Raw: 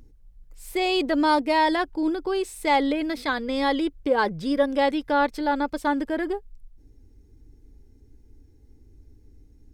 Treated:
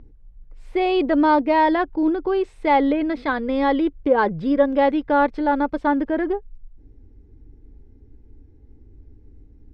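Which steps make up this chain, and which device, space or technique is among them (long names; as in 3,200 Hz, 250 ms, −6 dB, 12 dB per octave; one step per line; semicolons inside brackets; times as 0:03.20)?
phone in a pocket (low-pass filter 3,100 Hz 12 dB per octave; high-shelf EQ 2,100 Hz −8.5 dB)
level +5 dB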